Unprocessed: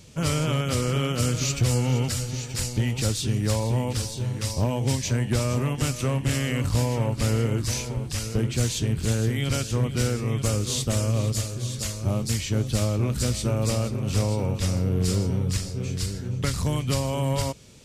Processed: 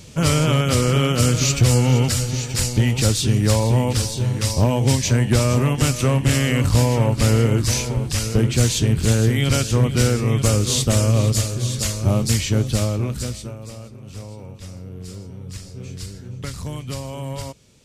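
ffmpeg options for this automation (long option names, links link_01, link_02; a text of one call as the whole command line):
ffmpeg -i in.wav -af "volume=14dB,afade=type=out:start_time=12.36:duration=0.84:silence=0.398107,afade=type=out:start_time=13.2:duration=0.38:silence=0.298538,afade=type=in:start_time=15.36:duration=0.44:silence=0.446684" out.wav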